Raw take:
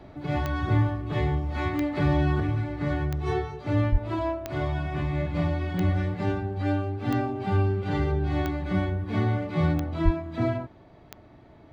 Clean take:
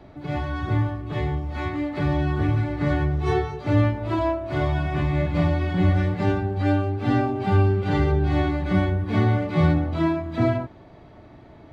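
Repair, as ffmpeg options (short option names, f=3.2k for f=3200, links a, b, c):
-filter_complex "[0:a]adeclick=t=4,asplit=3[a][b][c];[a]afade=t=out:st=3.91:d=0.02[d];[b]highpass=f=140:w=0.5412,highpass=f=140:w=1.3066,afade=t=in:st=3.91:d=0.02,afade=t=out:st=4.03:d=0.02[e];[c]afade=t=in:st=4.03:d=0.02[f];[d][e][f]amix=inputs=3:normalize=0,asplit=3[g][h][i];[g]afade=t=out:st=10.04:d=0.02[j];[h]highpass=f=140:w=0.5412,highpass=f=140:w=1.3066,afade=t=in:st=10.04:d=0.02,afade=t=out:st=10.16:d=0.02[k];[i]afade=t=in:st=10.16:d=0.02[l];[j][k][l]amix=inputs=3:normalize=0,asetnsamples=n=441:p=0,asendcmd='2.4 volume volume 5dB',volume=0dB"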